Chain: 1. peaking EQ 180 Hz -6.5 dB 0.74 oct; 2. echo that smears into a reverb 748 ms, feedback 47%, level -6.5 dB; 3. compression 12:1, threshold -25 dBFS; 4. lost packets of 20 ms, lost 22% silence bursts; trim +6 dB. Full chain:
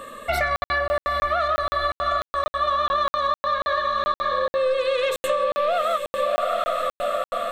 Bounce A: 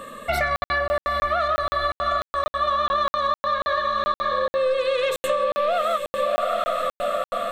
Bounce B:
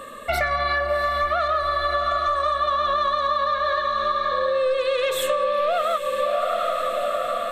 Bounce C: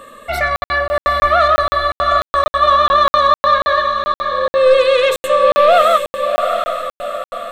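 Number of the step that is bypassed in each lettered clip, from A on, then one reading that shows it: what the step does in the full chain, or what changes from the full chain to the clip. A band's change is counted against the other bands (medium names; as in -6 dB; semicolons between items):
1, 250 Hz band +2.5 dB; 4, 8 kHz band +2.0 dB; 3, mean gain reduction 7.5 dB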